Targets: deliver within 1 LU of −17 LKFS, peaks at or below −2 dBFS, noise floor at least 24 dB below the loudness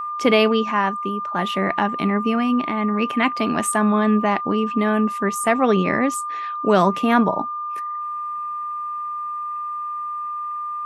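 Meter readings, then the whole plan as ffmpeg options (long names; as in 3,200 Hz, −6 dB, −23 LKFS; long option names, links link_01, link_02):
interfering tone 1,200 Hz; level of the tone −25 dBFS; integrated loudness −21.0 LKFS; sample peak −3.5 dBFS; target loudness −17.0 LKFS
→ -af "bandreject=frequency=1200:width=30"
-af "volume=4dB,alimiter=limit=-2dB:level=0:latency=1"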